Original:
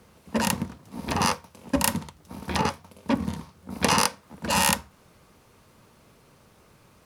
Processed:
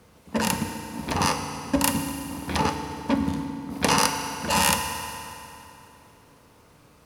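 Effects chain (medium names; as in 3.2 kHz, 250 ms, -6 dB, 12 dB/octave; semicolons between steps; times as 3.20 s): FDN reverb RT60 3 s, high-frequency decay 0.8×, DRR 5 dB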